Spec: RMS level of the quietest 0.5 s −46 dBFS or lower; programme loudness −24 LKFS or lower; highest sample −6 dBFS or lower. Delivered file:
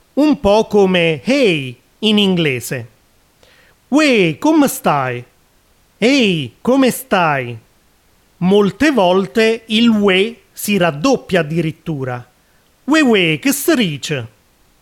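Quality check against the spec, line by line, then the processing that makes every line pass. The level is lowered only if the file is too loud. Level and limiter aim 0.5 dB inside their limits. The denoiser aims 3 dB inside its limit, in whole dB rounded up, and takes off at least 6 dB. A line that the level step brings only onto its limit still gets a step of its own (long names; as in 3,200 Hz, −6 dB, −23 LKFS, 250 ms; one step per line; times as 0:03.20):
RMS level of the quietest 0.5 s −54 dBFS: in spec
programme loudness −14.5 LKFS: out of spec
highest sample −2.5 dBFS: out of spec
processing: level −10 dB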